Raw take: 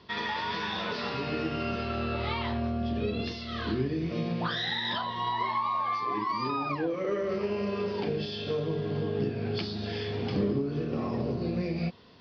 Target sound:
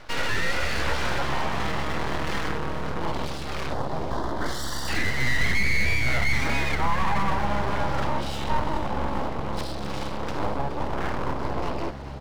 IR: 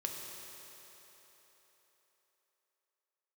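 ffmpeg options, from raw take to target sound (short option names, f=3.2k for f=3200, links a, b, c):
-filter_complex "[0:a]asubboost=boost=8:cutoff=96,asoftclip=type=tanh:threshold=-30dB,equalizer=f=125:t=o:w=1:g=-10,equalizer=f=250:t=o:w=1:g=3,equalizer=f=500:t=o:w=1:g=11,equalizer=f=1k:t=o:w=1:g=9,aeval=exprs='abs(val(0))':c=same,asettb=1/sr,asplit=3[a][b][c];[a]atrim=end=3.734[d];[b]atrim=start=3.73:end=4.88,asetpts=PTS-STARTPTS,afade=t=in:d=0.004:c=qsin,afade=t=out:st=1.146:d=0.004:c=qsin,asuperstop=centerf=2500:order=4:qfactor=1.7[e];[c]atrim=start=4.876[f];[d][e]acrossfade=d=0.004:c1=hsin:c2=qsin[g];[g][f]acrossfade=d=0.004:c1=qsin:c2=hsin,asplit=8[h][i][j][k][l][m][n][o];[i]adelay=422,afreqshift=-69,volume=-12.5dB[p];[j]adelay=844,afreqshift=-138,volume=-16.9dB[q];[k]adelay=1266,afreqshift=-207,volume=-21.4dB[r];[l]adelay=1688,afreqshift=-276,volume=-25.8dB[s];[m]adelay=2110,afreqshift=-345,volume=-30.2dB[t];[n]adelay=2532,afreqshift=-414,volume=-34.7dB[u];[o]adelay=2954,afreqshift=-483,volume=-39.1dB[v];[h][p][q][r][s][t][u][v]amix=inputs=8:normalize=0,volume=4.5dB"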